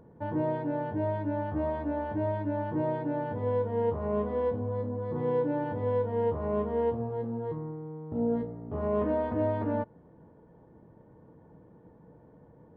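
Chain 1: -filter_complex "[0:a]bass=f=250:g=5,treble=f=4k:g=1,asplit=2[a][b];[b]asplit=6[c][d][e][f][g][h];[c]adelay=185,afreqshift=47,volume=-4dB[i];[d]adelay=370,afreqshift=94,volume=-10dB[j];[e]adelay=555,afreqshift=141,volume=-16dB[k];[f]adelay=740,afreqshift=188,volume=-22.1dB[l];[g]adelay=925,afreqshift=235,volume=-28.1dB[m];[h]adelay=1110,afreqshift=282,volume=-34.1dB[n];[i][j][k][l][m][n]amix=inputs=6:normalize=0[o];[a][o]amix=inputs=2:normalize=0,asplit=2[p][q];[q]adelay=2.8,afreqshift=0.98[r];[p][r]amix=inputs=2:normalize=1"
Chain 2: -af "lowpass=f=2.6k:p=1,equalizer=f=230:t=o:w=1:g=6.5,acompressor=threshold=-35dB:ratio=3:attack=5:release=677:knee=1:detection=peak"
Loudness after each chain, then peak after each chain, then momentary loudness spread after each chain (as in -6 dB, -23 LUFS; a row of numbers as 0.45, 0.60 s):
-31.0, -38.0 LUFS; -17.0, -26.5 dBFS; 7, 16 LU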